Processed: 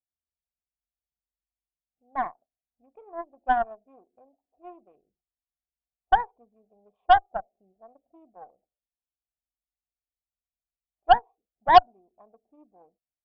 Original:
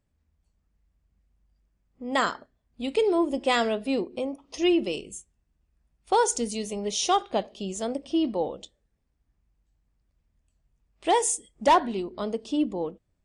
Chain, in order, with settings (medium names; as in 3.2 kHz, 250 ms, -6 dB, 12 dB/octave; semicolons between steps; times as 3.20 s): local Wiener filter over 41 samples; cascade formant filter a; dynamic bell 800 Hz, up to +5 dB, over -40 dBFS, Q 1.2; Chebyshev shaper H 6 -18 dB, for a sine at -10.5 dBFS; upward expansion 1.5:1, over -45 dBFS; trim +8.5 dB